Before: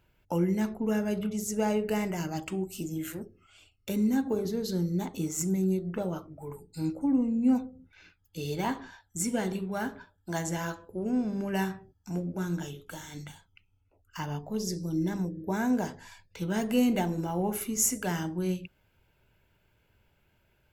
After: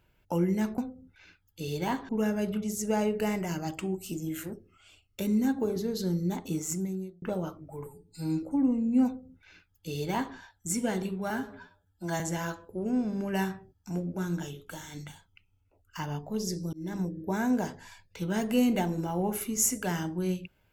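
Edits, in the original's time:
5.29–5.91 fade out
6.55–6.93 stretch 1.5×
7.55–8.86 copy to 0.78
9.8–10.4 stretch 1.5×
14.93–15.2 fade in

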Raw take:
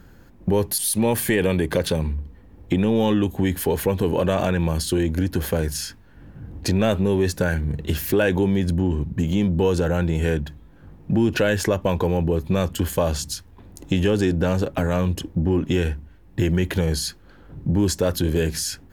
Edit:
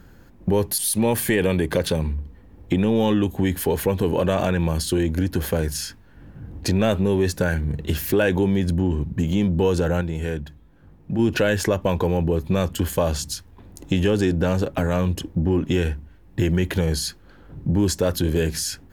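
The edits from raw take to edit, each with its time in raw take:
10.01–11.19 gain -5 dB

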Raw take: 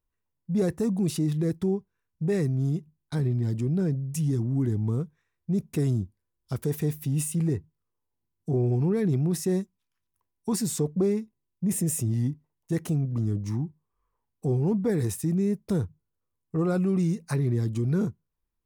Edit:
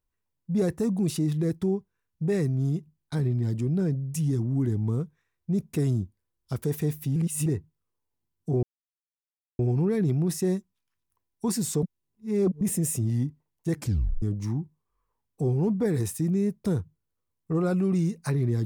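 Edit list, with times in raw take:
7.16–7.46 reverse
8.63 insert silence 0.96 s
10.87–11.65 reverse
12.78 tape stop 0.48 s

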